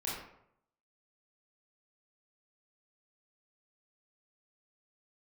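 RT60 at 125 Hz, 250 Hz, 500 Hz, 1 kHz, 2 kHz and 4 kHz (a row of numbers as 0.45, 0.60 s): 0.85, 0.70, 0.75, 0.70, 0.60, 0.40 s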